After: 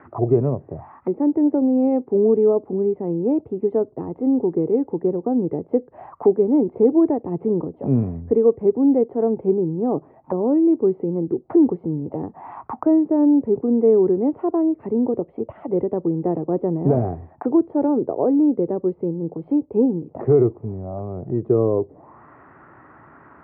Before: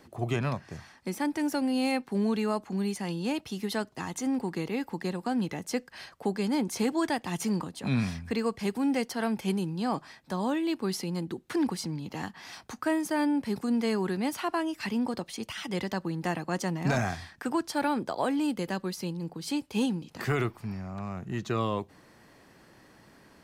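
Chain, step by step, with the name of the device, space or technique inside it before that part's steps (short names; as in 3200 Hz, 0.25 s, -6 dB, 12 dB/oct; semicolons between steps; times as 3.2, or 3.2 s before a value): envelope filter bass rig (envelope low-pass 460–1600 Hz down, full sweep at -32.5 dBFS; speaker cabinet 69–2200 Hz, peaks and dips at 200 Hz -9 dB, 500 Hz -6 dB, 1600 Hz -9 dB); gain +9 dB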